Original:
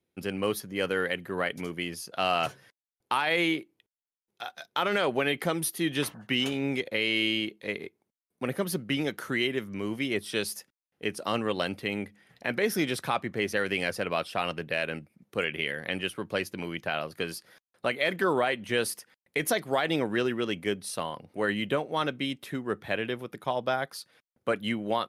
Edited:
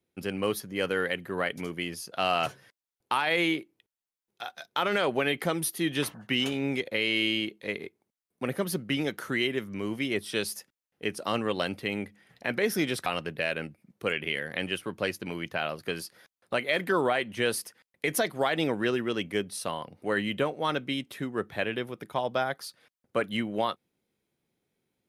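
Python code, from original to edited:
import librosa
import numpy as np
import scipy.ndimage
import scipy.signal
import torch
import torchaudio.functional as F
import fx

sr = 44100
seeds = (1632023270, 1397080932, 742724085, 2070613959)

y = fx.edit(x, sr, fx.cut(start_s=13.06, length_s=1.32), tone=tone)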